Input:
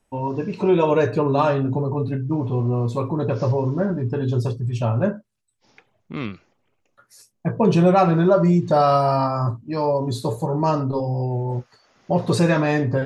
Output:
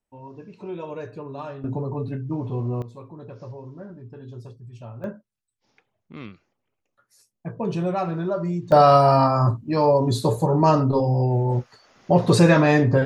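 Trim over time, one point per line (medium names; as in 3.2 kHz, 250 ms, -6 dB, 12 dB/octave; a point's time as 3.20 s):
-16 dB
from 1.64 s -5 dB
from 2.82 s -17.5 dB
from 5.04 s -9.5 dB
from 8.72 s +3 dB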